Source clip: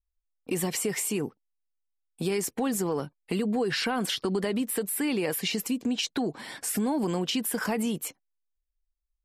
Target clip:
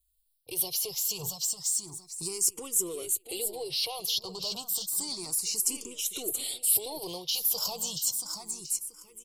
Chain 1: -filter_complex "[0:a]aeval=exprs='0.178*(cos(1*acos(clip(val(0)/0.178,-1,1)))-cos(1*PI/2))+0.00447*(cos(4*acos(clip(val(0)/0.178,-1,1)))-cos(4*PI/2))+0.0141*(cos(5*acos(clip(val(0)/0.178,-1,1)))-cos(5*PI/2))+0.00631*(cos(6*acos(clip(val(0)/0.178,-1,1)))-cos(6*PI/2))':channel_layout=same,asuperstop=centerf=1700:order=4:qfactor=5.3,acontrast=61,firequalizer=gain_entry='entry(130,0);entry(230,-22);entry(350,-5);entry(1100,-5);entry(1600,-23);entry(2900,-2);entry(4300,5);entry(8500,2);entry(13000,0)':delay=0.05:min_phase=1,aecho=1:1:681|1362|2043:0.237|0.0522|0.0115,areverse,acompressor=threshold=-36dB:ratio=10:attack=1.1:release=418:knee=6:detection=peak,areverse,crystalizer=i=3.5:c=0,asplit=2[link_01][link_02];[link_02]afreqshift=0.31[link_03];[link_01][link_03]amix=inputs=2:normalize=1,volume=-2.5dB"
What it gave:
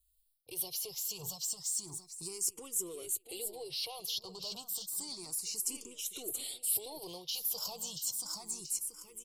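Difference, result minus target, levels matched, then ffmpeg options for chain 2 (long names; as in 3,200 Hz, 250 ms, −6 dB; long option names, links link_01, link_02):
downward compressor: peak gain reduction +7.5 dB
-filter_complex "[0:a]aeval=exprs='0.178*(cos(1*acos(clip(val(0)/0.178,-1,1)))-cos(1*PI/2))+0.00447*(cos(4*acos(clip(val(0)/0.178,-1,1)))-cos(4*PI/2))+0.0141*(cos(5*acos(clip(val(0)/0.178,-1,1)))-cos(5*PI/2))+0.00631*(cos(6*acos(clip(val(0)/0.178,-1,1)))-cos(6*PI/2))':channel_layout=same,asuperstop=centerf=1700:order=4:qfactor=5.3,acontrast=61,firequalizer=gain_entry='entry(130,0);entry(230,-22);entry(350,-5);entry(1100,-5);entry(1600,-23);entry(2900,-2);entry(4300,5);entry(8500,2);entry(13000,0)':delay=0.05:min_phase=1,aecho=1:1:681|1362|2043:0.237|0.0522|0.0115,areverse,acompressor=threshold=-27.5dB:ratio=10:attack=1.1:release=418:knee=6:detection=peak,areverse,crystalizer=i=3.5:c=0,asplit=2[link_01][link_02];[link_02]afreqshift=0.31[link_03];[link_01][link_03]amix=inputs=2:normalize=1,volume=-2.5dB"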